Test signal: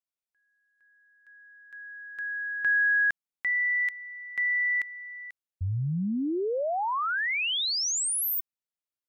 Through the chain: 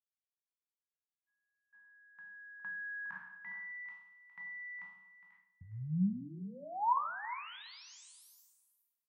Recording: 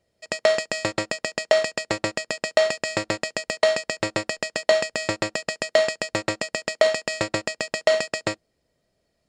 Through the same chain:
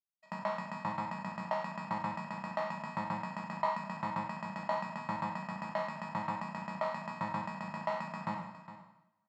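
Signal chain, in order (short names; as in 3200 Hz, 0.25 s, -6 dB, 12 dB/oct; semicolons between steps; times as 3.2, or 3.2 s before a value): spectral trails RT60 0.72 s; expander -44 dBFS; double band-pass 420 Hz, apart 2.4 oct; echo 0.411 s -13 dB; two-slope reverb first 0.36 s, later 1.7 s, from -18 dB, DRR 7 dB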